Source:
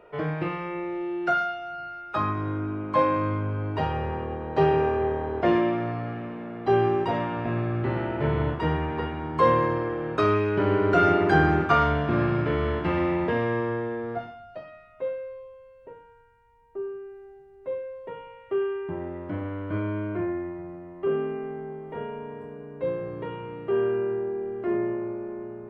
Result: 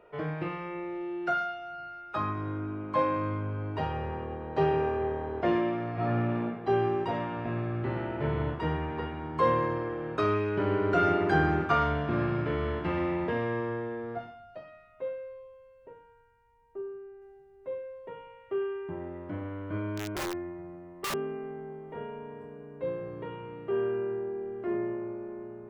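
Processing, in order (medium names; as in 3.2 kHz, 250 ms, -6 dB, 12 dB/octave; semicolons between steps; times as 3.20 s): 5.93–6.43 s: reverb throw, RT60 0.84 s, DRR -9 dB; 16.81–17.22 s: treble shelf 3.1 kHz -11.5 dB; 19.96–21.14 s: integer overflow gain 23 dB; trim -5 dB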